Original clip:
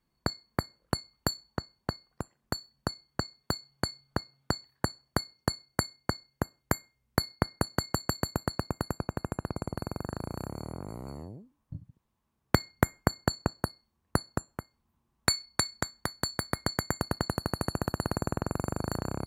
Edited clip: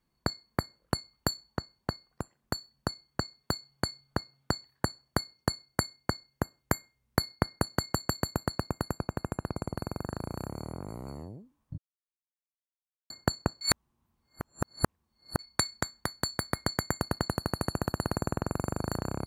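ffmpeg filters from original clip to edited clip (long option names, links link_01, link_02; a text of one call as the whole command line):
ffmpeg -i in.wav -filter_complex "[0:a]asplit=5[link_01][link_02][link_03][link_04][link_05];[link_01]atrim=end=11.78,asetpts=PTS-STARTPTS,afade=type=out:start_time=11.776:duration=0.004:curve=hsin[link_06];[link_02]atrim=start=11.78:end=13.1,asetpts=PTS-STARTPTS,volume=0[link_07];[link_03]atrim=start=13.1:end=13.612,asetpts=PTS-STARTPTS,afade=type=in:duration=0.004:curve=hsin[link_08];[link_04]atrim=start=13.608:end=15.392,asetpts=PTS-STARTPTS,areverse[link_09];[link_05]atrim=start=15.388[link_10];[link_06][link_07][link_08]concat=n=3:v=0:a=1[link_11];[link_11][link_09]acrossfade=duration=0.004:curve1=hsin:curve2=hsin[link_12];[link_12][link_10]acrossfade=duration=0.004:curve1=hsin:curve2=hsin" out.wav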